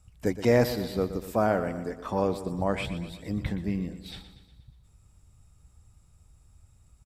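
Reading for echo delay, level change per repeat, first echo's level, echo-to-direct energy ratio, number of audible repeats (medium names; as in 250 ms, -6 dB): 120 ms, -5.0 dB, -12.5 dB, -11.0 dB, 5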